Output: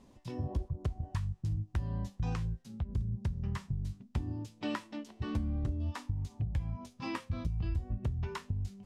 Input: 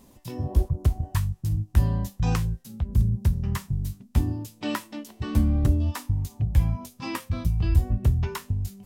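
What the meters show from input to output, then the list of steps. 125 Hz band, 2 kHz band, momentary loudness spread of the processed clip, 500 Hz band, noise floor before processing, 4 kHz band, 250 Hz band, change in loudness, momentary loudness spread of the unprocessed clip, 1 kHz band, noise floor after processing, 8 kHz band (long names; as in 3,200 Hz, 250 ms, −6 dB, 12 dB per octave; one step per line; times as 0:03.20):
−10.5 dB, −8.0 dB, 5 LU, −8.0 dB, −55 dBFS, −9.0 dB, −9.5 dB, −11.0 dB, 9 LU, −8.0 dB, −61 dBFS, −15.0 dB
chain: low-pass filter 7,200 Hz 12 dB per octave
high-shelf EQ 5,400 Hz −6 dB
downward compressor 6 to 1, threshold −25 dBFS, peak gain reduction 12 dB
level −5 dB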